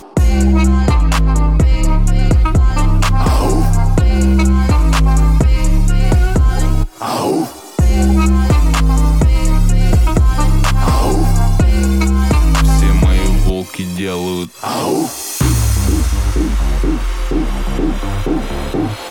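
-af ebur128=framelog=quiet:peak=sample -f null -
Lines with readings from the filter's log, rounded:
Integrated loudness:
  I:         -14.5 LUFS
  Threshold: -24.5 LUFS
Loudness range:
  LRA:         3.6 LU
  Threshold: -34.4 LUFS
  LRA low:   -16.9 LUFS
  LRA high:  -13.3 LUFS
Sample peak:
  Peak:       -4.3 dBFS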